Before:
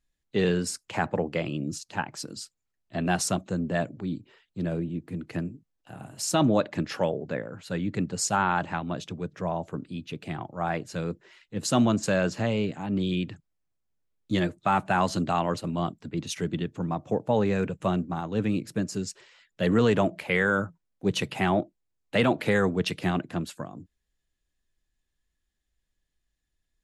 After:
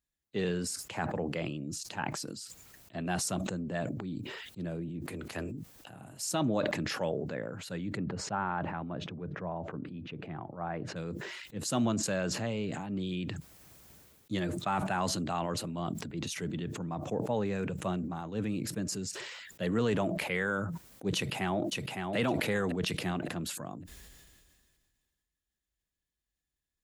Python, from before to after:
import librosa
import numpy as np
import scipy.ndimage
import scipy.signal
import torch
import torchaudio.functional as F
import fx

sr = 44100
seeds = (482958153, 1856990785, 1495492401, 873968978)

y = fx.spec_clip(x, sr, under_db=18, at=(5.05, 5.5), fade=0.02)
y = fx.lowpass(y, sr, hz=1700.0, slope=12, at=(7.96, 10.95), fade=0.02)
y = fx.echo_throw(y, sr, start_s=21.15, length_s=1.0, ms=560, feedback_pct=20, wet_db=-4.5)
y = scipy.signal.sosfilt(scipy.signal.butter(2, 42.0, 'highpass', fs=sr, output='sos'), y)
y = fx.high_shelf(y, sr, hz=10000.0, db=8.5)
y = fx.sustainer(y, sr, db_per_s=29.0)
y = y * librosa.db_to_amplitude(-8.0)